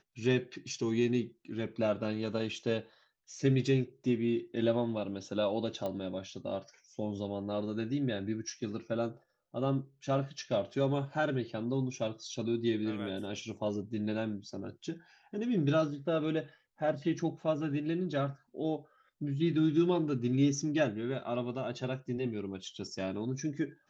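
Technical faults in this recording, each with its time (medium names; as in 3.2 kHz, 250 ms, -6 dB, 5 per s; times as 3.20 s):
5.86 s: pop -24 dBFS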